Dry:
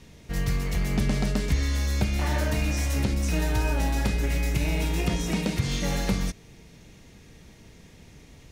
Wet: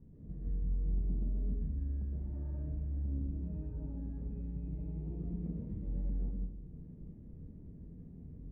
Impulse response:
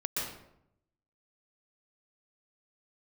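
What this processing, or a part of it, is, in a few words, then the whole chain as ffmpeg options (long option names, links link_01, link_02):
television next door: -filter_complex "[0:a]acompressor=threshold=-39dB:ratio=4,lowpass=260[link_01];[1:a]atrim=start_sample=2205[link_02];[link_01][link_02]afir=irnorm=-1:irlink=0,bandreject=frequency=60:width_type=h:width=6,bandreject=frequency=120:width_type=h:width=6,volume=-3.5dB"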